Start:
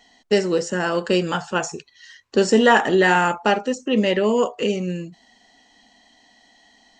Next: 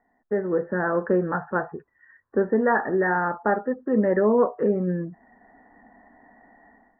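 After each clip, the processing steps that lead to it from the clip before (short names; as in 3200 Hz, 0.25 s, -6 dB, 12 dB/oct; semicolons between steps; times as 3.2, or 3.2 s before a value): Chebyshev low-pass 1800 Hz, order 6; AGC gain up to 15 dB; gain -8.5 dB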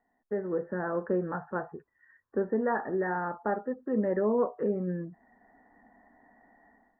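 dynamic EQ 1700 Hz, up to -4 dB, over -37 dBFS, Q 1.5; gain -7 dB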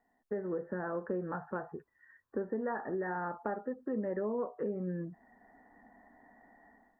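compressor 3:1, threshold -34 dBFS, peak gain reduction 9 dB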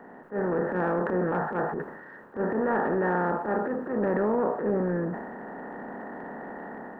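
per-bin compression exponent 0.4; transient shaper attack -11 dB, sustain +5 dB; three-band expander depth 40%; gain +5.5 dB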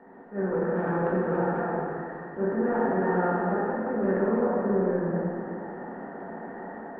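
bin magnitudes rounded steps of 15 dB; air absorption 180 m; plate-style reverb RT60 2.6 s, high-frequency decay 0.85×, DRR -5 dB; gain -5 dB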